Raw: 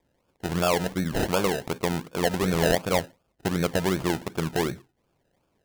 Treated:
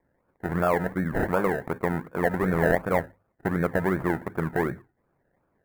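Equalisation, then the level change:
high shelf with overshoot 2,300 Hz −7 dB, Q 3
parametric band 5,500 Hz −13 dB 1.4 octaves
mains-hum notches 50/100 Hz
0.0 dB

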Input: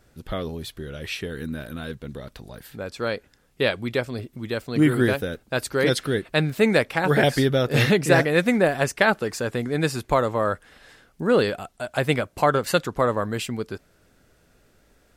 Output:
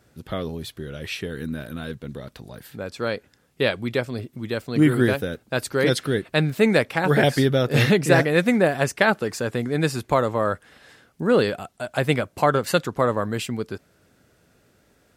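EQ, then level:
high-pass filter 89 Hz
low-shelf EQ 210 Hz +3.5 dB
0.0 dB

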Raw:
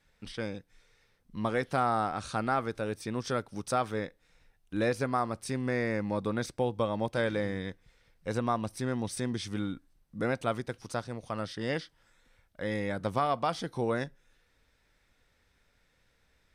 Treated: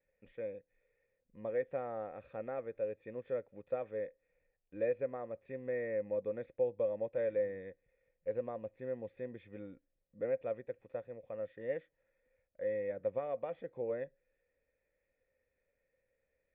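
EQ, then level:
formant resonators in series e
parametric band 1,800 Hz −6.5 dB 0.28 octaves
+2.0 dB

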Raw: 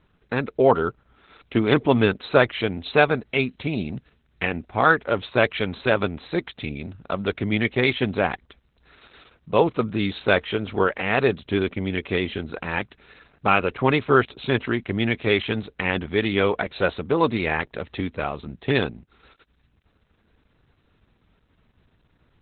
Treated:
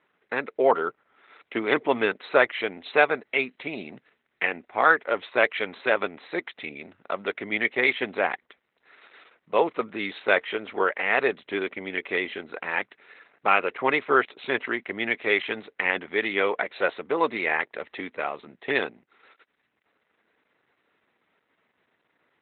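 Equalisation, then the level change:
band-pass filter 410–3,100 Hz
parametric band 2,000 Hz +6.5 dB 0.36 octaves
−1.5 dB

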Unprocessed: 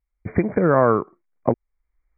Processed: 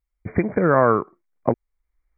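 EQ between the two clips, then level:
dynamic equaliser 1,800 Hz, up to +4 dB, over −31 dBFS, Q 0.86
−1.0 dB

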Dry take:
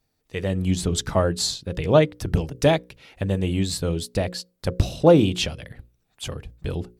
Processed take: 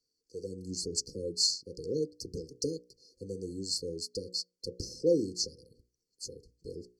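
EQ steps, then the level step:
linear-phase brick-wall band-stop 530–4,200 Hz
three-way crossover with the lows and the highs turned down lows −15 dB, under 310 Hz, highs −22 dB, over 6,600 Hz
high-shelf EQ 2,100 Hz +11.5 dB
−8.0 dB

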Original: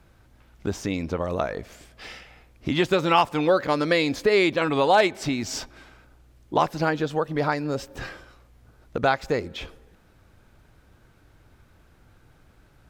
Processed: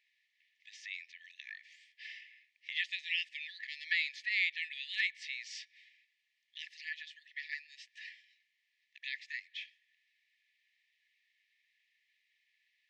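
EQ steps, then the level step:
linear-phase brick-wall high-pass 1,700 Hz
head-to-tape spacing loss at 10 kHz 39 dB
high-shelf EQ 2,400 Hz +8 dB
0.0 dB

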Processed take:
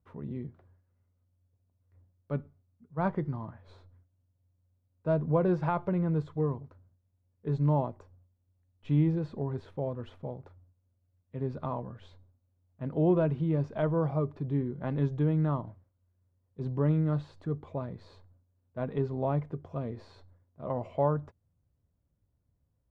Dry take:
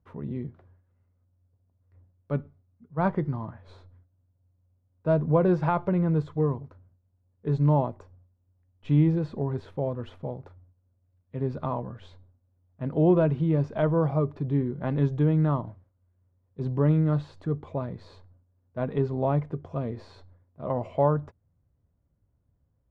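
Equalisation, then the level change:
no EQ move
−4.5 dB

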